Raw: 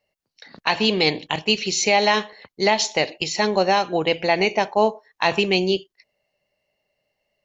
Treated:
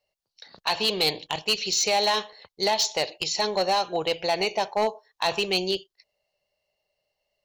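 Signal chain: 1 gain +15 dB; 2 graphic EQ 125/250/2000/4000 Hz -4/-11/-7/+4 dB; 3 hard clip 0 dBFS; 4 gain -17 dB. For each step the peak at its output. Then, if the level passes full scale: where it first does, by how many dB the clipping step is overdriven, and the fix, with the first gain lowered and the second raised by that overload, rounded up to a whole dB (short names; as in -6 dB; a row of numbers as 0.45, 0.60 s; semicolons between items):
+9.0, +8.5, 0.0, -17.0 dBFS; step 1, 8.5 dB; step 1 +6 dB, step 4 -8 dB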